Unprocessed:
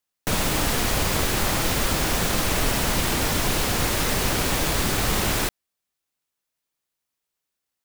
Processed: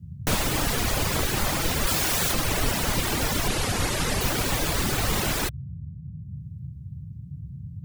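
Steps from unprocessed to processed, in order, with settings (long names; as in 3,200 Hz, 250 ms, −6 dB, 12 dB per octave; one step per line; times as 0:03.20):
0:03.48–0:04.21: low-pass filter 12,000 Hz 24 dB per octave
reverb reduction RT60 0.87 s
0:01.87–0:02.33: spectral tilt +1.5 dB per octave
noise in a band 66–160 Hz −37 dBFS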